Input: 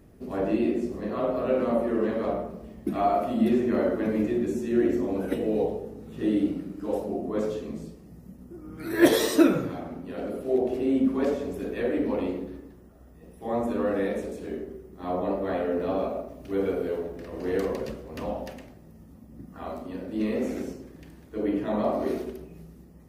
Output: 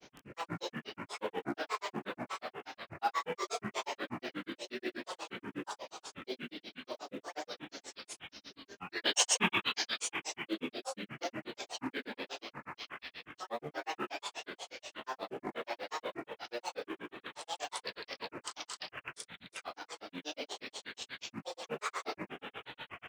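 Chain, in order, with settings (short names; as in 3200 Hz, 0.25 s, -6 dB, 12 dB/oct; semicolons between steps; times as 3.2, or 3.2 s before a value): downsampling 11025 Hz; on a send: thinning echo 0.182 s, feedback 78%, high-pass 850 Hz, level -3 dB; on the sum: upward compressor, threshold -28 dBFS; differentiator; frequency-shifting echo 0.195 s, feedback 44%, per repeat -43 Hz, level -18 dB; in parallel at -6 dB: short-mantissa float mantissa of 2-bit; on the sum: grains, grains 8.3/s, spray 26 ms, pitch spread up and down by 12 st; gain +9.5 dB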